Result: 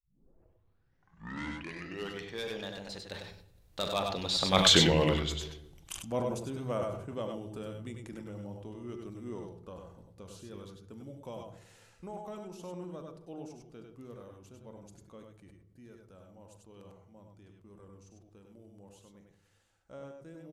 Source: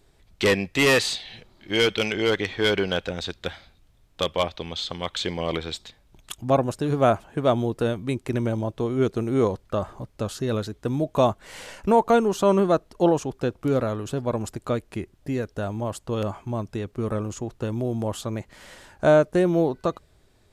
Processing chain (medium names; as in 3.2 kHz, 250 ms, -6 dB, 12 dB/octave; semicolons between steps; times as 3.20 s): tape start-up on the opening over 2.75 s; Doppler pass-by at 4.66 s, 34 m/s, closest 4.3 m; treble shelf 6.4 kHz +8 dB; in parallel at -2 dB: compression, threshold -54 dBFS, peak gain reduction 26.5 dB; on the sum: multi-tap echo 41/94/100 ms -17/-9.5/-6 dB; on a send at -12 dB: reverberation RT60 1.0 s, pre-delay 3 ms; on the sum: decay stretcher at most 64 dB/s; trim +5.5 dB